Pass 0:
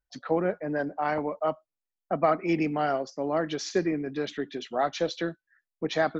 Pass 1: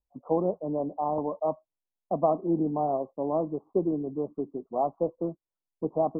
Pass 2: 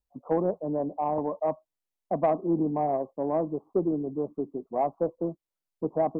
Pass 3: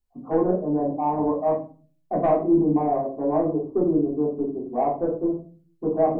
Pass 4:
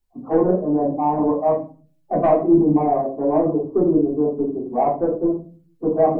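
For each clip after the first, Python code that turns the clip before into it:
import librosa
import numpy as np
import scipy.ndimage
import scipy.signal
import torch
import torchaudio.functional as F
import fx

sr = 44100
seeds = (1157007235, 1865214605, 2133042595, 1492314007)

y1 = scipy.signal.sosfilt(scipy.signal.butter(16, 1100.0, 'lowpass', fs=sr, output='sos'), x)
y2 = 10.0 ** (-14.0 / 20.0) * np.tanh(y1 / 10.0 ** (-14.0 / 20.0))
y2 = y2 * 10.0 ** (1.0 / 20.0)
y3 = fx.room_shoebox(y2, sr, seeds[0], volume_m3=250.0, walls='furnished', distance_m=3.4)
y3 = y3 * 10.0 ** (-3.0 / 20.0)
y4 = fx.spec_quant(y3, sr, step_db=15)
y4 = y4 * 10.0 ** (4.5 / 20.0)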